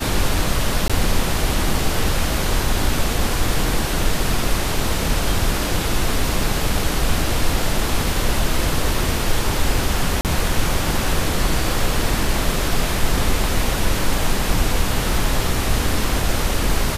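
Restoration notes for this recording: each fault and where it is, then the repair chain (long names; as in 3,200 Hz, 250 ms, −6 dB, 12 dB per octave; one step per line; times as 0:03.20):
0:00.88–0:00.90: drop-out 16 ms
0:10.21–0:10.25: drop-out 38 ms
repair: repair the gap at 0:00.88, 16 ms
repair the gap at 0:10.21, 38 ms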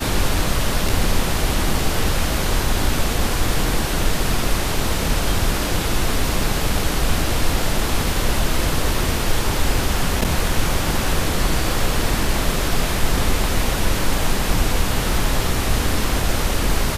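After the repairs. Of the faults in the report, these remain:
none of them is left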